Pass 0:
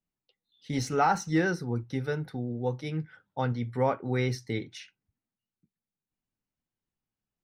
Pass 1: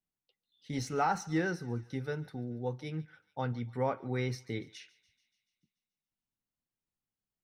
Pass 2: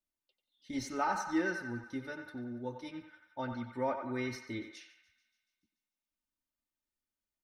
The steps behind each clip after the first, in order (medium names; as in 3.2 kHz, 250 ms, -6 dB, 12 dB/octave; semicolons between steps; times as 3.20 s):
thinning echo 144 ms, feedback 64%, high-pass 1 kHz, level -20 dB; trim -5.5 dB
comb 3.3 ms, depth 88%; band-passed feedback delay 92 ms, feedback 61%, band-pass 1.3 kHz, level -5 dB; trim -4.5 dB